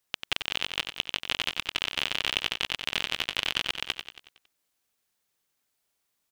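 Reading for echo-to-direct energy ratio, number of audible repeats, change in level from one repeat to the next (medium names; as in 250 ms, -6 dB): -6.0 dB, 5, -6.0 dB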